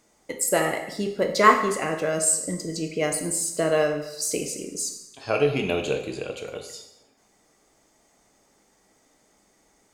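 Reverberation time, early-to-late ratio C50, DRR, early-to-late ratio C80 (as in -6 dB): 0.85 s, 8.0 dB, 4.0 dB, 10.0 dB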